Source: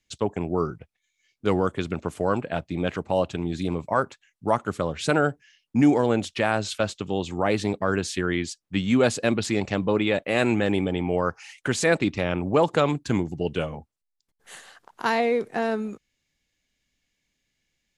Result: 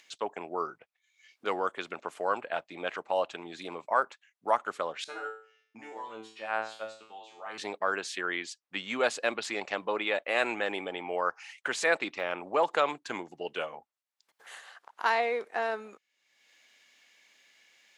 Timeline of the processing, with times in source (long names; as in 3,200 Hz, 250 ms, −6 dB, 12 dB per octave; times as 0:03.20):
0:05.04–0:07.58: tuned comb filter 110 Hz, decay 0.43 s, mix 100%
0:12.10–0:12.66: de-essing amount 95%
whole clip: high-pass filter 720 Hz 12 dB per octave; high-shelf EQ 4,500 Hz −10.5 dB; upward compression, threshold −46 dBFS